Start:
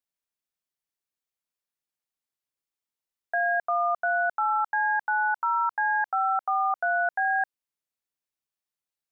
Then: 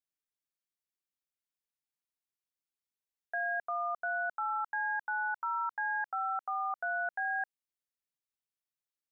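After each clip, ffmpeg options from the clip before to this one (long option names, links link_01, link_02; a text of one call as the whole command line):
ffmpeg -i in.wav -af "equalizer=frequency=740:width=1.1:gain=-4,volume=-6.5dB" out.wav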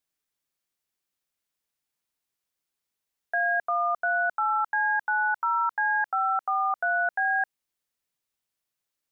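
ffmpeg -i in.wav -af "acontrast=66,volume=2dB" out.wav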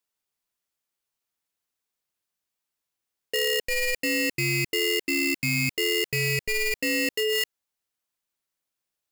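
ffmpeg -i in.wav -af "aeval=exprs='val(0)*sgn(sin(2*PI*1200*n/s))':channel_layout=same" out.wav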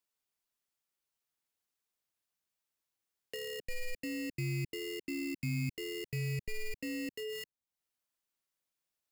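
ffmpeg -i in.wav -filter_complex "[0:a]acrossover=split=280[link_01][link_02];[link_02]acompressor=threshold=-50dB:ratio=2[link_03];[link_01][link_03]amix=inputs=2:normalize=0,volume=-4dB" out.wav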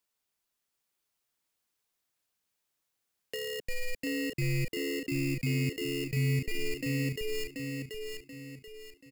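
ffmpeg -i in.wav -af "aecho=1:1:733|1466|2199|2932|3665:0.596|0.232|0.0906|0.0353|0.0138,volume=4.5dB" out.wav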